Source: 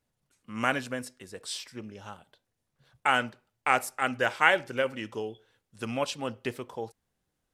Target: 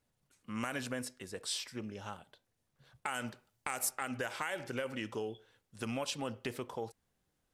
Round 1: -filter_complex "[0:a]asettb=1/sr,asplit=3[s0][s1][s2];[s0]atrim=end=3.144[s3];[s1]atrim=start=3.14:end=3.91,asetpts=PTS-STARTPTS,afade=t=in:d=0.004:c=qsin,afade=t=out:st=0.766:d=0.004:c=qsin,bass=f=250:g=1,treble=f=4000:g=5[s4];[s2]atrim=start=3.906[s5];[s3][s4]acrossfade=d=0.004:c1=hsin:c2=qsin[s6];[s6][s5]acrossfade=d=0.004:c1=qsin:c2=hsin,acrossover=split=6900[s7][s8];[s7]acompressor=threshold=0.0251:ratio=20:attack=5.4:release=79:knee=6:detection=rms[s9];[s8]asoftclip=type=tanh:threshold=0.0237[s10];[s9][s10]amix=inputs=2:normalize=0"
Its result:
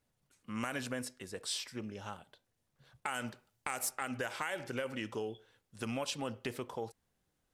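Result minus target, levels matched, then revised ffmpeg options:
saturation: distortion +14 dB
-filter_complex "[0:a]asettb=1/sr,asplit=3[s0][s1][s2];[s0]atrim=end=3.144[s3];[s1]atrim=start=3.14:end=3.91,asetpts=PTS-STARTPTS,afade=t=in:d=0.004:c=qsin,afade=t=out:st=0.766:d=0.004:c=qsin,bass=f=250:g=1,treble=f=4000:g=5[s4];[s2]atrim=start=3.906[s5];[s3][s4]acrossfade=d=0.004:c1=hsin:c2=qsin[s6];[s6][s5]acrossfade=d=0.004:c1=qsin:c2=hsin,acrossover=split=6900[s7][s8];[s7]acompressor=threshold=0.0251:ratio=20:attack=5.4:release=79:knee=6:detection=rms[s9];[s8]asoftclip=type=tanh:threshold=0.075[s10];[s9][s10]amix=inputs=2:normalize=0"

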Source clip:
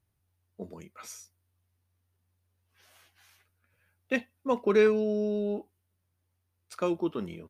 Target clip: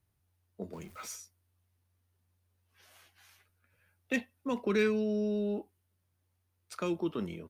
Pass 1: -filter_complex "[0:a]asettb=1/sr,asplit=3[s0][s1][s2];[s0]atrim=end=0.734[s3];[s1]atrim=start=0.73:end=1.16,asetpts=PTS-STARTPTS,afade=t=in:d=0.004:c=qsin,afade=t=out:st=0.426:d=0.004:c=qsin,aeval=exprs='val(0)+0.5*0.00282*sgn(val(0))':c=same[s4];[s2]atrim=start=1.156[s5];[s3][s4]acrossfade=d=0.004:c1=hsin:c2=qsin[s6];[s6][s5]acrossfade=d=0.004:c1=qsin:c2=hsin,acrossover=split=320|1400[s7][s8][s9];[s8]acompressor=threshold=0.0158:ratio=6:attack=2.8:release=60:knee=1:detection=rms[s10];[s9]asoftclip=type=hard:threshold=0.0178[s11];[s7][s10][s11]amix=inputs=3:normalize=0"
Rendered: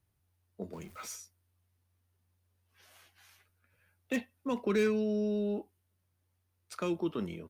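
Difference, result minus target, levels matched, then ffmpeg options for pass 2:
hard clipper: distortion +9 dB
-filter_complex "[0:a]asettb=1/sr,asplit=3[s0][s1][s2];[s0]atrim=end=0.734[s3];[s1]atrim=start=0.73:end=1.16,asetpts=PTS-STARTPTS,afade=t=in:d=0.004:c=qsin,afade=t=out:st=0.426:d=0.004:c=qsin,aeval=exprs='val(0)+0.5*0.00282*sgn(val(0))':c=same[s4];[s2]atrim=start=1.156[s5];[s3][s4]acrossfade=d=0.004:c1=hsin:c2=qsin[s6];[s6][s5]acrossfade=d=0.004:c1=qsin:c2=hsin,acrossover=split=320|1400[s7][s8][s9];[s8]acompressor=threshold=0.0158:ratio=6:attack=2.8:release=60:knee=1:detection=rms[s10];[s9]asoftclip=type=hard:threshold=0.0473[s11];[s7][s10][s11]amix=inputs=3:normalize=0"

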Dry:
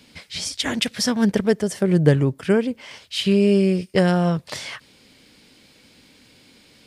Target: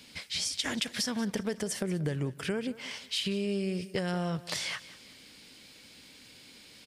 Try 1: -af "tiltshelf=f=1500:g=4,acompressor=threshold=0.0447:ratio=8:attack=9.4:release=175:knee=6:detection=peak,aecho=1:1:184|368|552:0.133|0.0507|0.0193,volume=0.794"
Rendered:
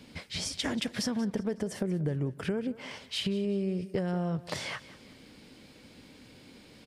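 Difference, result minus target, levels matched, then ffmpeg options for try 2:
2 kHz band -2.5 dB
-af "tiltshelf=f=1500:g=-3.5,acompressor=threshold=0.0447:ratio=8:attack=9.4:release=175:knee=6:detection=peak,aecho=1:1:184|368|552:0.133|0.0507|0.0193,volume=0.794"

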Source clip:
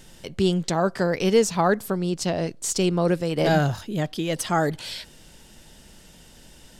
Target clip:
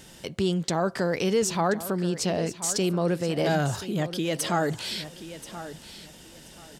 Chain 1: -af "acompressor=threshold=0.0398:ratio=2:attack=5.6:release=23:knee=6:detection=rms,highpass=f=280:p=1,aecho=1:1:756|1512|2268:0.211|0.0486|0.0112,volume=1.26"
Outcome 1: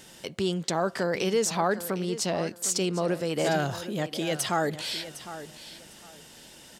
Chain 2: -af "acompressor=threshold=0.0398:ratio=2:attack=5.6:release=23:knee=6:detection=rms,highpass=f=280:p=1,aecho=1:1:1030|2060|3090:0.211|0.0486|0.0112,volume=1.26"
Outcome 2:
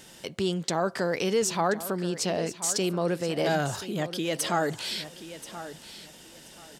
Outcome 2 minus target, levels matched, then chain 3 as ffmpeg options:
125 Hz band -3.0 dB
-af "acompressor=threshold=0.0398:ratio=2:attack=5.6:release=23:knee=6:detection=rms,highpass=f=93:p=1,aecho=1:1:1030|2060|3090:0.211|0.0486|0.0112,volume=1.26"

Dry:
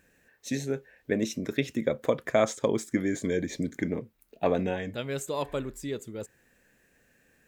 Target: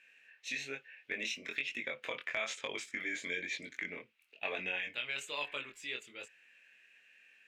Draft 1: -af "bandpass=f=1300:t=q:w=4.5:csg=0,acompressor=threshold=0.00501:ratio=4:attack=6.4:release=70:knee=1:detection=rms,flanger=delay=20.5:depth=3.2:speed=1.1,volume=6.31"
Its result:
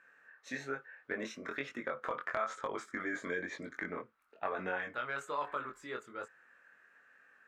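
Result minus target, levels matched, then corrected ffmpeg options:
1 kHz band +10.5 dB
-af "bandpass=f=2600:t=q:w=4.5:csg=0,acompressor=threshold=0.00501:ratio=4:attack=6.4:release=70:knee=1:detection=rms,flanger=delay=20.5:depth=3.2:speed=1.1,volume=6.31"

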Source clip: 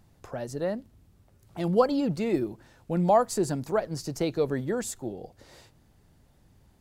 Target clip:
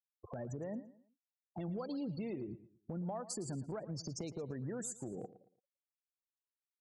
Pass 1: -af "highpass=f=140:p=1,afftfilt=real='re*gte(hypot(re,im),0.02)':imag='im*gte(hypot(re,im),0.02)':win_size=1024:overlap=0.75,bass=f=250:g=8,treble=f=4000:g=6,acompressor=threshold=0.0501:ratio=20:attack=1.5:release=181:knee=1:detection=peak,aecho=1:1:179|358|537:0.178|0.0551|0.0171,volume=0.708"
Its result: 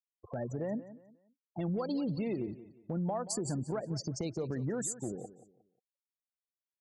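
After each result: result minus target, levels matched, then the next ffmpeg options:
echo 66 ms late; compression: peak gain reduction -6.5 dB
-af "highpass=f=140:p=1,afftfilt=real='re*gte(hypot(re,im),0.02)':imag='im*gte(hypot(re,im),0.02)':win_size=1024:overlap=0.75,bass=f=250:g=8,treble=f=4000:g=6,acompressor=threshold=0.0501:ratio=20:attack=1.5:release=181:knee=1:detection=peak,aecho=1:1:113|226|339:0.178|0.0551|0.0171,volume=0.708"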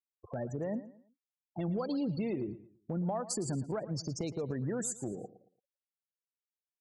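compression: peak gain reduction -6.5 dB
-af "highpass=f=140:p=1,afftfilt=real='re*gte(hypot(re,im),0.02)':imag='im*gte(hypot(re,im),0.02)':win_size=1024:overlap=0.75,bass=f=250:g=8,treble=f=4000:g=6,acompressor=threshold=0.0224:ratio=20:attack=1.5:release=181:knee=1:detection=peak,aecho=1:1:113|226|339:0.178|0.0551|0.0171,volume=0.708"

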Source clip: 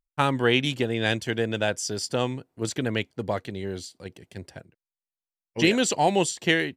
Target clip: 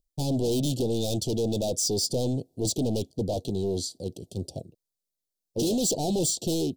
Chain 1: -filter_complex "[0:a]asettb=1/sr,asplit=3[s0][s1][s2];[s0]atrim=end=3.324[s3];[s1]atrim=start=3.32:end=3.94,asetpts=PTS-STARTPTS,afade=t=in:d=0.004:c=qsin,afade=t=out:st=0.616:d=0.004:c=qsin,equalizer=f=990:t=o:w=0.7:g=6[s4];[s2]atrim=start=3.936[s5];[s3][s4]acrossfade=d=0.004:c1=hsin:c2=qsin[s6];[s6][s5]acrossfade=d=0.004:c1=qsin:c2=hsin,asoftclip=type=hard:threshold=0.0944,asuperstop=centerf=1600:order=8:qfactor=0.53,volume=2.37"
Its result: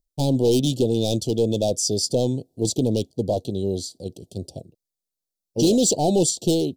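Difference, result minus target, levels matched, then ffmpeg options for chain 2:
hard clipper: distortion -6 dB
-filter_complex "[0:a]asettb=1/sr,asplit=3[s0][s1][s2];[s0]atrim=end=3.324[s3];[s1]atrim=start=3.32:end=3.94,asetpts=PTS-STARTPTS,afade=t=in:d=0.004:c=qsin,afade=t=out:st=0.616:d=0.004:c=qsin,equalizer=f=990:t=o:w=0.7:g=6[s4];[s2]atrim=start=3.936[s5];[s3][s4]acrossfade=d=0.004:c1=hsin:c2=qsin[s6];[s6][s5]acrossfade=d=0.004:c1=qsin:c2=hsin,asoftclip=type=hard:threshold=0.0299,asuperstop=centerf=1600:order=8:qfactor=0.53,volume=2.37"

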